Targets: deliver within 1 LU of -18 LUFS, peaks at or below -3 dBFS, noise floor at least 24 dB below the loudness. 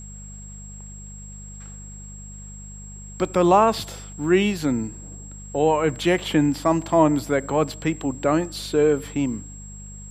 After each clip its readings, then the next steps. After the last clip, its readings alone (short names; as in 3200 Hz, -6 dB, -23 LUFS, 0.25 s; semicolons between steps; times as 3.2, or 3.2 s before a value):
hum 50 Hz; harmonics up to 200 Hz; hum level -37 dBFS; steady tone 7600 Hz; tone level -41 dBFS; loudness -21.5 LUFS; peak -5.0 dBFS; loudness target -18.0 LUFS
-> de-hum 50 Hz, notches 4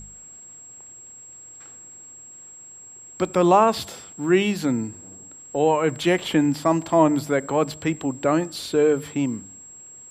hum none; steady tone 7600 Hz; tone level -41 dBFS
-> notch 7600 Hz, Q 30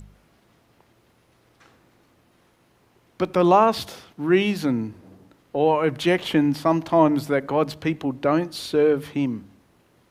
steady tone none; loudness -21.5 LUFS; peak -5.0 dBFS; loudness target -18.0 LUFS
-> gain +3.5 dB; limiter -3 dBFS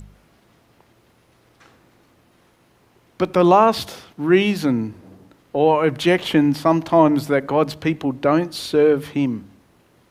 loudness -18.5 LUFS; peak -3.0 dBFS; noise floor -58 dBFS